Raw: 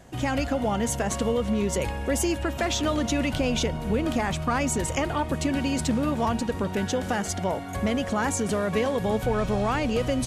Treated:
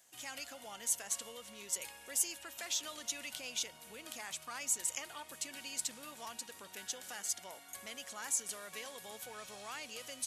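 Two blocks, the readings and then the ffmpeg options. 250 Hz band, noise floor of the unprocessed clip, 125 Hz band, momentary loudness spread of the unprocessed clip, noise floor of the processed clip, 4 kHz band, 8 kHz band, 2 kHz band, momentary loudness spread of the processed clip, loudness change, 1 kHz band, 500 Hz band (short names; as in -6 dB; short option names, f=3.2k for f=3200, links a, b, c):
-32.0 dB, -33 dBFS, -38.0 dB, 3 LU, -56 dBFS, -9.0 dB, -3.0 dB, -14.0 dB, 13 LU, -13.5 dB, -20.5 dB, -25.5 dB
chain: -af "aderivative,volume=-3dB"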